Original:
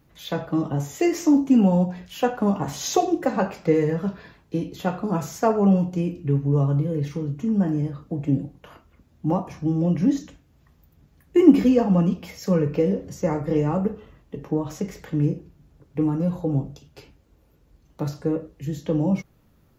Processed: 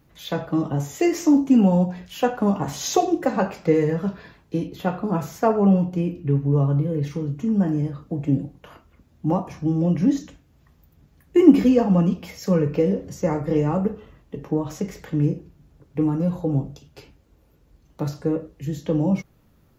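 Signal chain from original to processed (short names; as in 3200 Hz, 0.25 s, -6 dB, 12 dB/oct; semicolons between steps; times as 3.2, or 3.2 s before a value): 4.67–7.03 bell 6900 Hz -6.5 dB 1.3 oct; gain +1 dB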